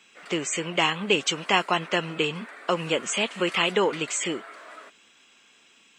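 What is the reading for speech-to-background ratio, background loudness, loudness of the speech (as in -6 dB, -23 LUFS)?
17.5 dB, -43.0 LUFS, -25.5 LUFS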